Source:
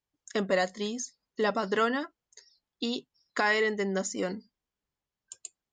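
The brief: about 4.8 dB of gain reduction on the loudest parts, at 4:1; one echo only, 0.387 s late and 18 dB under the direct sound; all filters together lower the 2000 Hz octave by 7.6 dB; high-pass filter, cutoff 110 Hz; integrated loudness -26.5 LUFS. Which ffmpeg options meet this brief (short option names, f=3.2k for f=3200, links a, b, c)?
-af "highpass=110,equalizer=f=2k:t=o:g=-9,acompressor=threshold=-29dB:ratio=4,aecho=1:1:387:0.126,volume=9dB"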